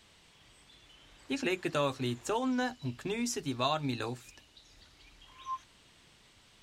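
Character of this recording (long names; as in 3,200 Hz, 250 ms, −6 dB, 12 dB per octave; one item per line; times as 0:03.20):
background noise floor −62 dBFS
spectral slope −4.5 dB per octave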